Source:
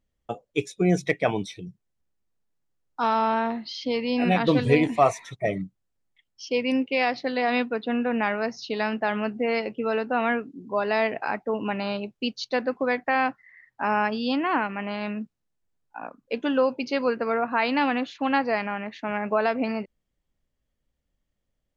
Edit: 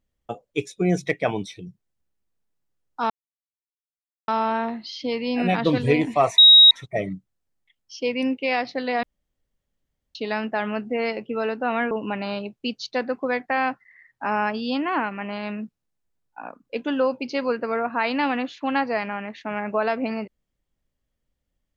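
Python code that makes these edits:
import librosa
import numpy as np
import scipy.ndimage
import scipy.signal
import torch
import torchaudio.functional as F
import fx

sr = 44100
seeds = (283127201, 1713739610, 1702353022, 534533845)

y = fx.edit(x, sr, fx.insert_silence(at_s=3.1, length_s=1.18),
    fx.insert_tone(at_s=5.2, length_s=0.33, hz=3800.0, db=-7.0),
    fx.room_tone_fill(start_s=7.52, length_s=1.12),
    fx.cut(start_s=10.4, length_s=1.09), tone=tone)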